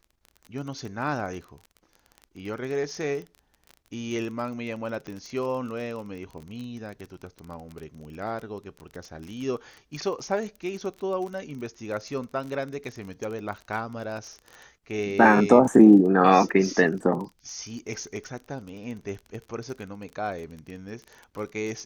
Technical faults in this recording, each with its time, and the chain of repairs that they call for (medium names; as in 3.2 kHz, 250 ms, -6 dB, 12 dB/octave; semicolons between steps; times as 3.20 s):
crackle 29 per s -34 dBFS
5.07 s: pop -25 dBFS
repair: de-click